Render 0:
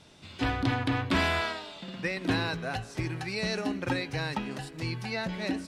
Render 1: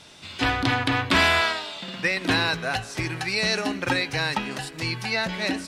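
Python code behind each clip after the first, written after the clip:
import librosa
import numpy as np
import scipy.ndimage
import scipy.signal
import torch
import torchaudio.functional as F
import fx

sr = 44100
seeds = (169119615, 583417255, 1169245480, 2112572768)

y = fx.tilt_shelf(x, sr, db=-4.5, hz=680.0)
y = y * librosa.db_to_amplitude(6.0)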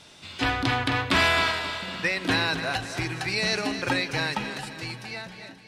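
y = fx.fade_out_tail(x, sr, length_s=1.49)
y = fx.echo_feedback(y, sr, ms=266, feedback_pct=50, wet_db=-10.5)
y = y * librosa.db_to_amplitude(-2.0)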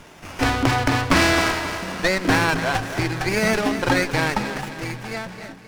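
y = fx.running_max(x, sr, window=9)
y = y * librosa.db_to_amplitude(7.0)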